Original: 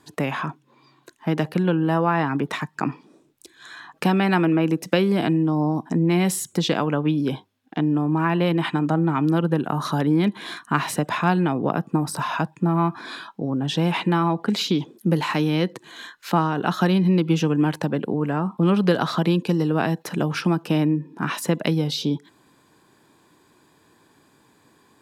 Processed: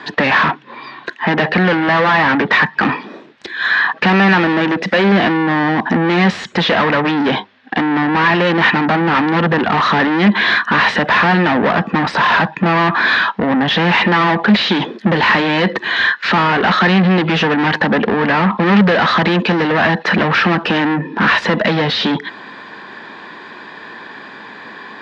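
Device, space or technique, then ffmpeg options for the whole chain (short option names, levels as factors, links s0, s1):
overdrive pedal into a guitar cabinet: -filter_complex "[0:a]asplit=2[s0][s1];[s1]highpass=f=720:p=1,volume=56.2,asoftclip=type=tanh:threshold=0.562[s2];[s0][s2]amix=inputs=2:normalize=0,lowpass=f=3800:p=1,volume=0.501,highpass=86,equalizer=f=140:t=q:w=4:g=-3,equalizer=f=210:t=q:w=4:g=7,equalizer=f=310:t=q:w=4:g=-4,equalizer=f=1800:t=q:w=4:g=8,lowpass=f=4300:w=0.5412,lowpass=f=4300:w=1.3066,volume=0.841"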